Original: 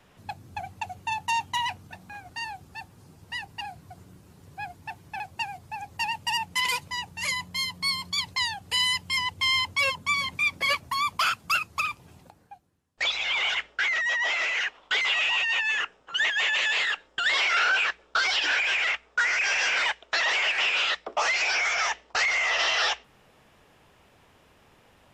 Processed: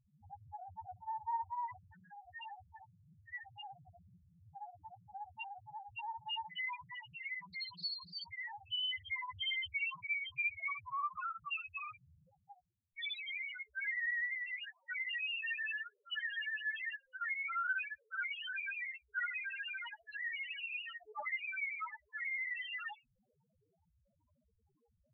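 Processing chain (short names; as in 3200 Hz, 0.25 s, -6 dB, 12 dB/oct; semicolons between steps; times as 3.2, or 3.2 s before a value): local time reversal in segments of 49 ms; loudest bins only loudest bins 1; Doppler distortion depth 0.18 ms; gain -3 dB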